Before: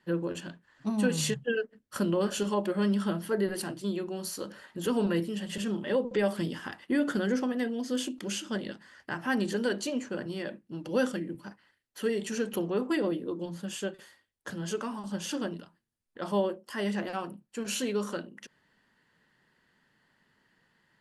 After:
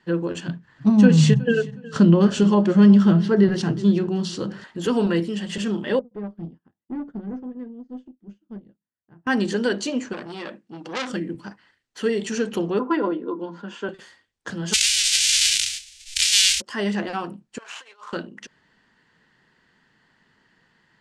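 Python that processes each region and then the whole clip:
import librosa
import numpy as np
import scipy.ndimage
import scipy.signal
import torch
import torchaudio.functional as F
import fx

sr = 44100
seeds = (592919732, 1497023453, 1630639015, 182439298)

y = fx.chain(x, sr, fx.peak_eq(hz=140.0, db=14.5, octaves=1.3),
    fx.echo_feedback(ms=366, feedback_pct=30, wet_db=-19.5),
    fx.resample_linear(factor=3), at=(0.48, 4.64))
y = fx.chain(y, sr, fx.bandpass_q(hz=120.0, q=0.8),
    fx.tube_stage(drive_db=31.0, bias=0.3),
    fx.upward_expand(threshold_db=-56.0, expansion=2.5), at=(5.99, 9.27))
y = fx.chain(y, sr, fx.highpass(hz=280.0, slope=6),
    fx.transformer_sat(knee_hz=3300.0), at=(10.13, 11.1))
y = fx.chain(y, sr, fx.highpass(hz=220.0, slope=24),
    fx.spacing_loss(db_at_10k=26),
    fx.small_body(hz=(1000.0, 1400.0), ring_ms=35, db=14), at=(12.79, 13.89))
y = fx.envelope_flatten(y, sr, power=0.1, at=(14.72, 16.6), fade=0.02)
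y = fx.cheby2_bandstop(y, sr, low_hz=230.0, high_hz=750.0, order=4, stop_db=70, at=(14.72, 16.6), fade=0.02)
y = fx.env_flatten(y, sr, amount_pct=70, at=(14.72, 16.6), fade=0.02)
y = fx.chain(y, sr, fx.median_filter(points=9),
    fx.over_compress(threshold_db=-34.0, ratio=-0.5),
    fx.ladder_highpass(hz=760.0, resonance_pct=35), at=(17.58, 18.13))
y = scipy.signal.sosfilt(scipy.signal.butter(4, 7900.0, 'lowpass', fs=sr, output='sos'), y)
y = fx.notch(y, sr, hz=570.0, q=12.0)
y = y * 10.0 ** (7.0 / 20.0)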